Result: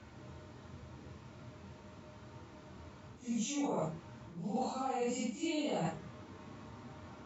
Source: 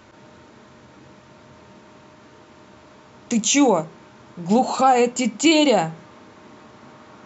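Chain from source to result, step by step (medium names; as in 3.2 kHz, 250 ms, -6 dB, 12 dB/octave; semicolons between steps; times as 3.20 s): phase randomisation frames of 200 ms; peaking EQ 80 Hz +14 dB 1.8 oct; band-stop 1.6 kHz, Q 22; reverse; compression 12:1, threshold -24 dBFS, peak gain reduction 16.5 dB; reverse; trim -8.5 dB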